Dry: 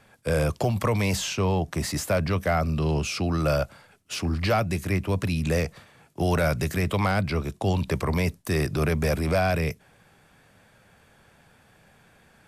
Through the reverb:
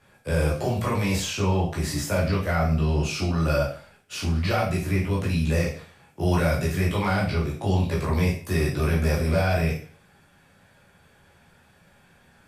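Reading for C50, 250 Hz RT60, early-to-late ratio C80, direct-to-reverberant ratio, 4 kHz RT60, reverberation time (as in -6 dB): 5.5 dB, 0.40 s, 10.5 dB, -5.5 dB, 0.45 s, 0.45 s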